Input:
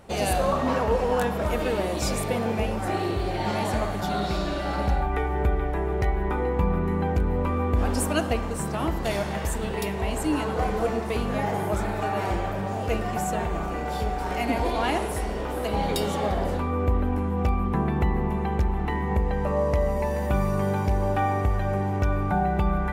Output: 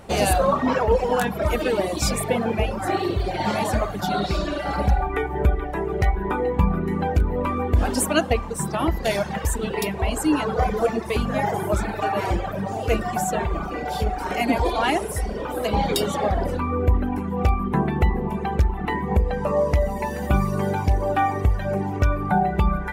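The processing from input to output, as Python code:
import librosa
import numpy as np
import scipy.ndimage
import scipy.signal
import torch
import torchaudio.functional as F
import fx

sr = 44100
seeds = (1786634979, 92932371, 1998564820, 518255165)

y = fx.dereverb_blind(x, sr, rt60_s=1.9)
y = y * librosa.db_to_amplitude(6.0)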